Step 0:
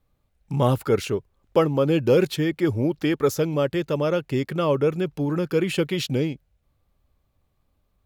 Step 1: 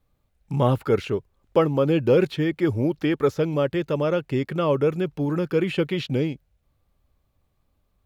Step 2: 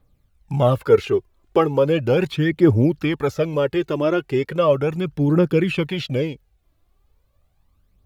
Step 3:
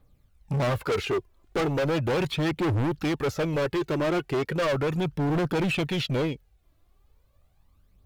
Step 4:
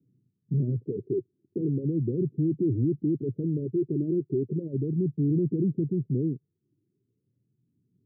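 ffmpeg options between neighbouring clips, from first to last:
-filter_complex "[0:a]acrossover=split=3800[a][b];[b]acompressor=threshold=-51dB:ratio=4:attack=1:release=60[c];[a][c]amix=inputs=2:normalize=0"
-af "aphaser=in_gain=1:out_gain=1:delay=3.1:decay=0.55:speed=0.37:type=triangular,volume=2dB"
-af "volume=23dB,asoftclip=hard,volume=-23dB"
-af "asuperpass=centerf=210:order=12:qfactor=0.73,volume=1.5dB"

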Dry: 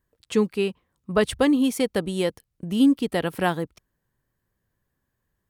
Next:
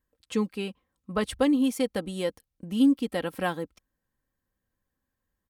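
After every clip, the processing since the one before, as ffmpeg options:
-af "aecho=1:1:3.8:0.45,volume=-6dB"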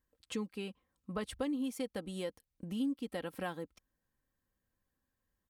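-af "acompressor=threshold=-39dB:ratio=2,volume=-2.5dB"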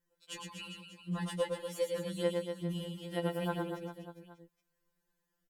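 -filter_complex "[0:a]asplit=2[a][b];[b]aecho=0:1:110|242|400.4|590.5|818.6:0.631|0.398|0.251|0.158|0.1[c];[a][c]amix=inputs=2:normalize=0,afftfilt=real='re*2.83*eq(mod(b,8),0)':imag='im*2.83*eq(mod(b,8),0)':win_size=2048:overlap=0.75,volume=3.5dB"

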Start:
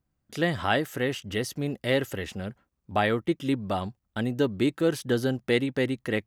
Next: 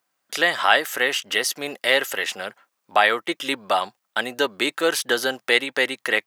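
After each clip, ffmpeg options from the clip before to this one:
-filter_complex "[0:a]highpass=810,asplit=2[a][b];[b]alimiter=limit=-22.5dB:level=0:latency=1:release=311,volume=-2dB[c];[a][c]amix=inputs=2:normalize=0,volume=8.5dB"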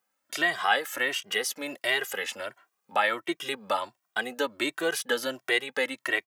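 -filter_complex "[0:a]equalizer=f=4.2k:w=1.5:g=-3,asplit=2[a][b];[b]acompressor=threshold=-29dB:ratio=6,volume=-2.5dB[c];[a][c]amix=inputs=2:normalize=0,asplit=2[d][e];[e]adelay=2,afreqshift=1.4[f];[d][f]amix=inputs=2:normalize=1,volume=-5dB"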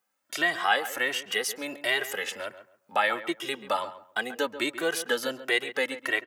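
-filter_complex "[0:a]asplit=2[a][b];[b]adelay=136,lowpass=f=1.7k:p=1,volume=-12dB,asplit=2[c][d];[d]adelay=136,lowpass=f=1.7k:p=1,volume=0.24,asplit=2[e][f];[f]adelay=136,lowpass=f=1.7k:p=1,volume=0.24[g];[a][c][e][g]amix=inputs=4:normalize=0"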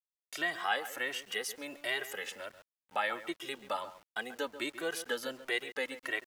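-af "aeval=exprs='val(0)*gte(abs(val(0)),0.00447)':c=same,volume=-8dB"

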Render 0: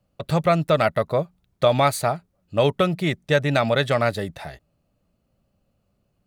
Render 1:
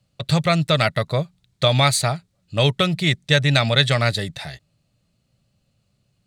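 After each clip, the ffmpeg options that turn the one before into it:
-af "equalizer=f=125:t=o:w=1:g=11,equalizer=f=2k:t=o:w=1:g=6,equalizer=f=4k:t=o:w=1:g=12,equalizer=f=8k:t=o:w=1:g=11,volume=-3.5dB"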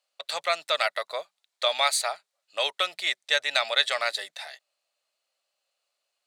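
-af "highpass=f=610:w=0.5412,highpass=f=610:w=1.3066,volume=-4.5dB"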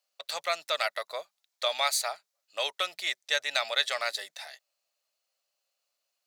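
-af "aexciter=amount=1.2:drive=7.7:freq=5.1k,volume=-4dB"

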